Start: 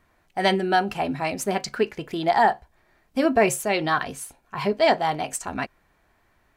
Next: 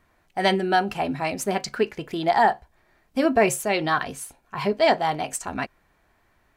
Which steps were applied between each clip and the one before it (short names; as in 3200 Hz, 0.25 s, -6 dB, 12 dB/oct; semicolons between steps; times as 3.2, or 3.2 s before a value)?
nothing audible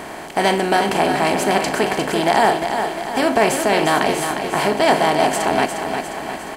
per-bin compression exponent 0.4; feedback echo 0.354 s, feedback 55%, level -7 dB; gain -1 dB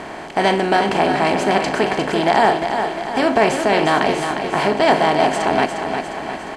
air absorption 73 m; gain +1 dB